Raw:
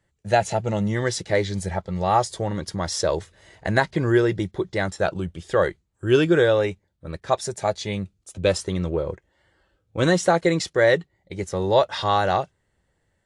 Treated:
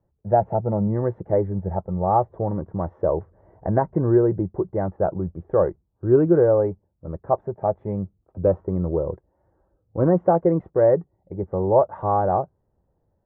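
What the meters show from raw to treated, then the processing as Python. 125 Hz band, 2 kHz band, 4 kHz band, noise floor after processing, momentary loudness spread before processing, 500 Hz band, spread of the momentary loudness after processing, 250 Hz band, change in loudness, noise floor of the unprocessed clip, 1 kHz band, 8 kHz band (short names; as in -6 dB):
+1.5 dB, -17.5 dB, under -40 dB, -71 dBFS, 13 LU, +1.5 dB, 12 LU, +1.5 dB, +0.5 dB, -72 dBFS, 0.0 dB, under -40 dB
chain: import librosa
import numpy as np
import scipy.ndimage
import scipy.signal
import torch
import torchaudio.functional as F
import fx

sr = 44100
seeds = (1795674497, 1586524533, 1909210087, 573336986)

y = scipy.signal.sosfilt(scipy.signal.cheby2(4, 70, 4300.0, 'lowpass', fs=sr, output='sos'), x)
y = y * librosa.db_to_amplitude(1.5)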